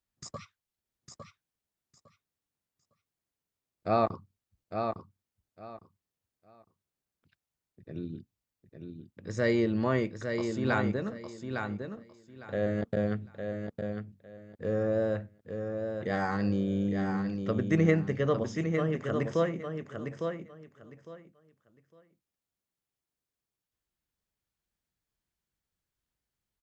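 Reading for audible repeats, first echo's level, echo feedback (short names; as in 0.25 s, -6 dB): 3, -6.0 dB, 21%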